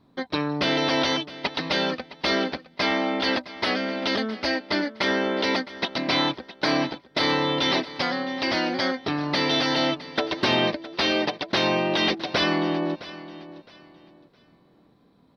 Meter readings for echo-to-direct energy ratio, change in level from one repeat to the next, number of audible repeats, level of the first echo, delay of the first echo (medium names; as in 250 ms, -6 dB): -16.0 dB, -11.5 dB, 2, -16.5 dB, 663 ms